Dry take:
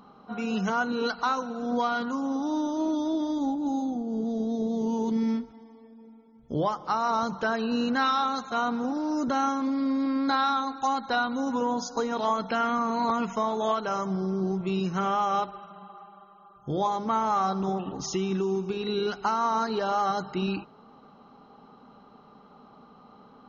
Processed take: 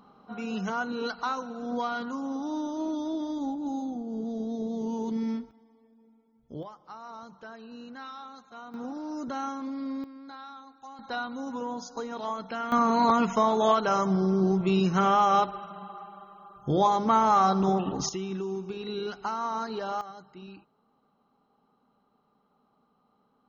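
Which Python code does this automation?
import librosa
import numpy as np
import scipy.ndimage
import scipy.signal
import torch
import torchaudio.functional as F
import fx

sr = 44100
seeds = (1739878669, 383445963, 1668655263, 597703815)

y = fx.gain(x, sr, db=fx.steps((0.0, -4.0), (5.51, -10.5), (6.63, -17.5), (8.74, -7.5), (10.04, -19.5), (10.99, -7.0), (12.72, 4.0), (18.09, -5.5), (20.01, -17.0)))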